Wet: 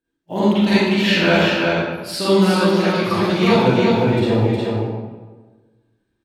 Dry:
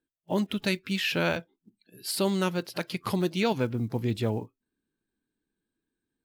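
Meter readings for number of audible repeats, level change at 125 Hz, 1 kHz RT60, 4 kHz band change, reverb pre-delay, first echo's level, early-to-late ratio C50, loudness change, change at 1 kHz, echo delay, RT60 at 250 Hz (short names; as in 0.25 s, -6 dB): 1, +12.0 dB, 1.3 s, +11.5 dB, 37 ms, -3.0 dB, -8.0 dB, +12.5 dB, +14.0 dB, 0.361 s, 1.4 s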